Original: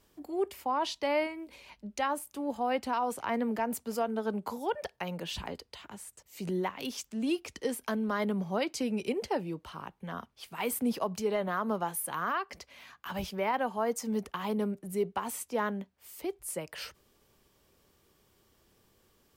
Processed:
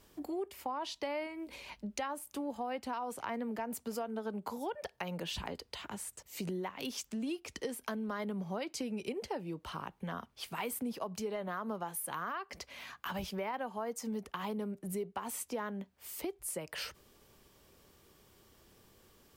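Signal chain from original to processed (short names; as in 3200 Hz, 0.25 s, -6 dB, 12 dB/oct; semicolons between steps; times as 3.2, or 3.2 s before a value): compressor 4:1, threshold -41 dBFS, peak gain reduction 13.5 dB; gain +4 dB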